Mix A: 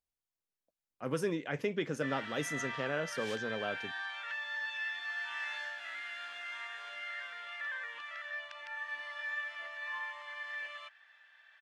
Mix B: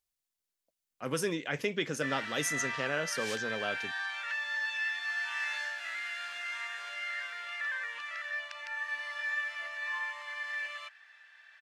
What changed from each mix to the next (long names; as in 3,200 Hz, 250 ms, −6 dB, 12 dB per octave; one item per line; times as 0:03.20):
background: add parametric band 3,300 Hz −7 dB 0.3 octaves
master: add high-shelf EQ 2,000 Hz +10.5 dB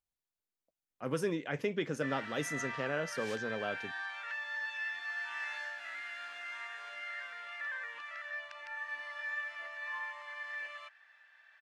master: add high-shelf EQ 2,000 Hz −10.5 dB